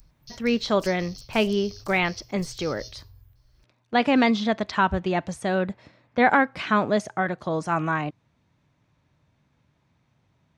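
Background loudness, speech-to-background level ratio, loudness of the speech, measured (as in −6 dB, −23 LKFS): −44.0 LKFS, 19.5 dB, −24.5 LKFS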